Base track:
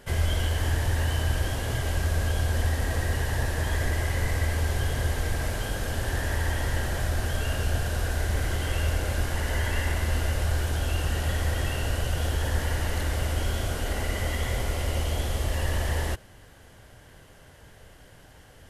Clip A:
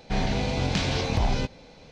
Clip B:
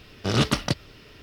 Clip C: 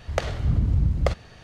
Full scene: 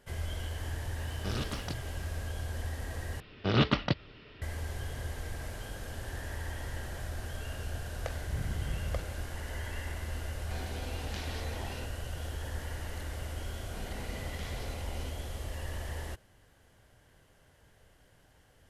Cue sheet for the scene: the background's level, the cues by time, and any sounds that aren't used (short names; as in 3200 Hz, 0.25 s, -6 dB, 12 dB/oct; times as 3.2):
base track -11.5 dB
1 add B -7 dB + limiter -20 dBFS
3.2 replace with B -3.5 dB + LPF 3900 Hz 24 dB/oct
7.88 add C -14.5 dB
10.39 add A -14.5 dB + HPF 230 Hz 24 dB/oct
13.64 add A -10 dB + limiter -26.5 dBFS